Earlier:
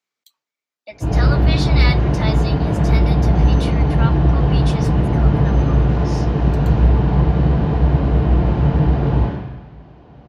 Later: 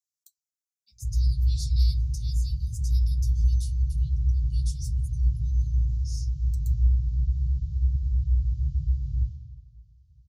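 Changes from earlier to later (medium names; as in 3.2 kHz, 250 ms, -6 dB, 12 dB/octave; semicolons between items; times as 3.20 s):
background -7.0 dB; master: add inverse Chebyshev band-stop 350–1700 Hz, stop band 70 dB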